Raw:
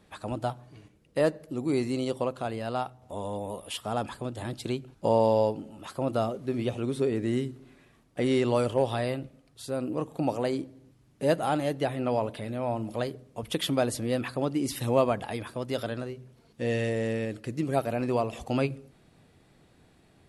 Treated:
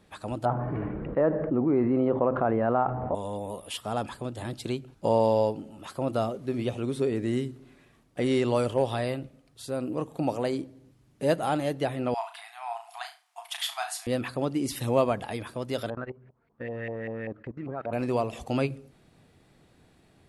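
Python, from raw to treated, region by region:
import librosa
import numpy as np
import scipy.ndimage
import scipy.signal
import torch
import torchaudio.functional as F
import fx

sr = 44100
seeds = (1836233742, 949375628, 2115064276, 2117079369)

y = fx.chain(x, sr, fx.lowpass(hz=1600.0, slope=24),
    fx.peak_eq(hz=96.0, db=-6.0, octaves=1.0),
    fx.env_flatten(amount_pct=70), at=(0.45, 3.15))
y = fx.chain(y, sr, fx.brickwall_highpass(low_hz=660.0),
    fx.room_flutter(wall_m=6.0, rt60_s=0.29), at=(12.14, 14.07))
y = fx.chain(y, sr, fx.level_steps(step_db=18),
    fx.filter_lfo_lowpass(shape='saw_up', hz=5.1, low_hz=770.0, high_hz=2200.0, q=3.5), at=(15.9, 17.93))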